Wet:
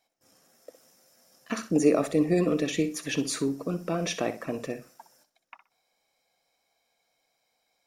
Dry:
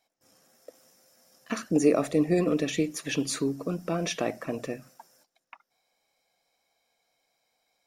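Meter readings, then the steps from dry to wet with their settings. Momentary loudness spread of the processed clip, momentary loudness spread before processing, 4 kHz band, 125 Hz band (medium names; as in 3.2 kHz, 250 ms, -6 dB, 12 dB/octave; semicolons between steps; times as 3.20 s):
13 LU, 13 LU, 0.0 dB, +0.5 dB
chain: flutter echo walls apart 10.7 m, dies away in 0.28 s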